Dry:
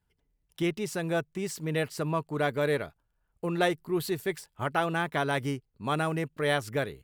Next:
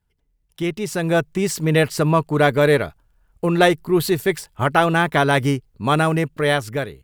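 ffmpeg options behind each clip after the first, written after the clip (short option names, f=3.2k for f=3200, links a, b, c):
-af "lowshelf=f=69:g=7.5,dynaudnorm=f=280:g=7:m=11.5dB,volume=1.5dB"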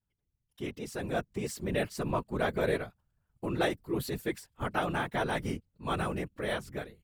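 -af "afftfilt=real='hypot(re,im)*cos(2*PI*random(0))':imag='hypot(re,im)*sin(2*PI*random(1))':win_size=512:overlap=0.75,volume=-8.5dB"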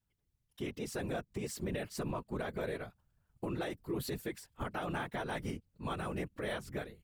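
-filter_complex "[0:a]asplit=2[a][b];[b]acompressor=threshold=-38dB:ratio=6,volume=0dB[c];[a][c]amix=inputs=2:normalize=0,alimiter=limit=-23.5dB:level=0:latency=1:release=184,volume=-4.5dB"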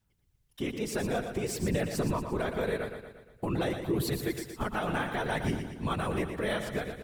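-af "aphaser=in_gain=1:out_gain=1:delay=4.8:decay=0.28:speed=0.53:type=sinusoidal,aecho=1:1:117|234|351|468|585|702:0.398|0.211|0.112|0.0593|0.0314|0.0166,volume=6dB"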